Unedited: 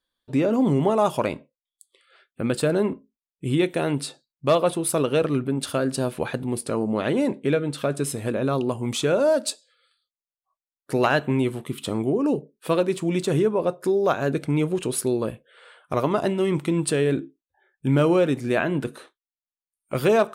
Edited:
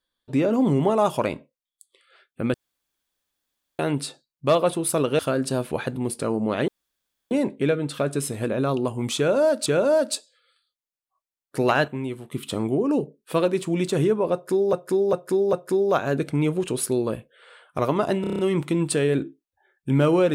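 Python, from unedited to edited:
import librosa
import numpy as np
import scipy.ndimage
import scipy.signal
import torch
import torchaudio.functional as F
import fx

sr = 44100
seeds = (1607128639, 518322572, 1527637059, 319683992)

y = fx.edit(x, sr, fx.room_tone_fill(start_s=2.54, length_s=1.25),
    fx.cut(start_s=5.19, length_s=0.47),
    fx.insert_room_tone(at_s=7.15, length_s=0.63),
    fx.repeat(start_s=9.01, length_s=0.49, count=2),
    fx.clip_gain(start_s=11.23, length_s=0.44, db=-7.5),
    fx.repeat(start_s=13.68, length_s=0.4, count=4),
    fx.stutter(start_s=16.36, slice_s=0.03, count=7), tone=tone)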